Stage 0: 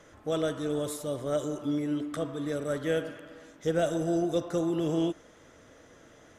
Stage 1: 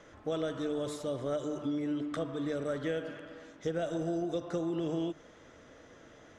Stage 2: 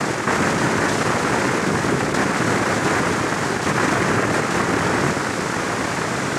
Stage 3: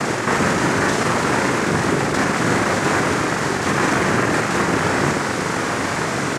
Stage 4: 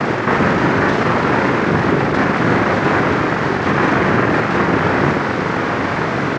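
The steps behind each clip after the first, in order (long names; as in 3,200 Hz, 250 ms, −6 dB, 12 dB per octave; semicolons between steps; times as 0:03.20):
low-pass filter 5,800 Hz 12 dB per octave; mains-hum notches 50/100/150 Hz; downward compressor, threshold −30 dBFS, peak gain reduction 8 dB
compressor on every frequency bin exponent 0.2; high-shelf EQ 4,400 Hz +10.5 dB; cochlear-implant simulation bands 3; level +7 dB
double-tracking delay 43 ms −6 dB
high-frequency loss of the air 240 metres; level +4.5 dB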